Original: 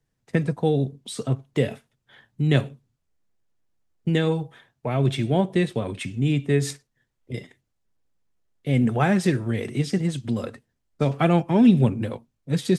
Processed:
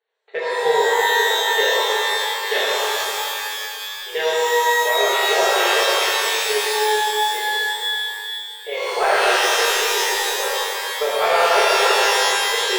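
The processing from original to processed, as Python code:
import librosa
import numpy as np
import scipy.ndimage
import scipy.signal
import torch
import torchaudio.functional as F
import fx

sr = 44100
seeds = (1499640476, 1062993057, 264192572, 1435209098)

p1 = fx.brickwall_bandpass(x, sr, low_hz=380.0, high_hz=4500.0)
p2 = 10.0 ** (-23.0 / 20.0) * np.tanh(p1 / 10.0 ** (-23.0 / 20.0))
p3 = p1 + (p2 * librosa.db_to_amplitude(-8.0))
p4 = fx.rev_shimmer(p3, sr, seeds[0], rt60_s=2.7, semitones=12, shimmer_db=-2, drr_db=-8.5)
y = p4 * librosa.db_to_amplitude(-2.5)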